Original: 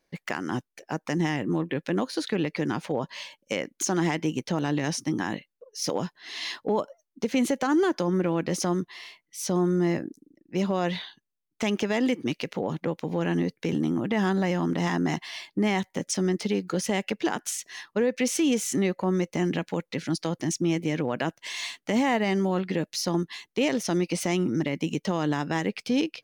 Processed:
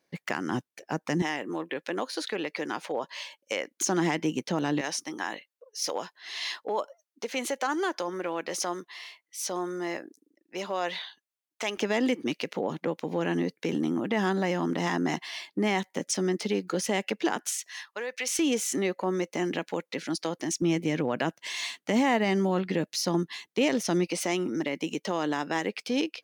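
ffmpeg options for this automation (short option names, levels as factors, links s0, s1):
-af "asetnsamples=n=441:p=0,asendcmd='1.22 highpass f 440;3.77 highpass f 180;4.81 highpass f 540;11.77 highpass f 220;17.49 highpass f 890;18.39 highpass f 290;20.62 highpass f 140;24.07 highpass f 300',highpass=110"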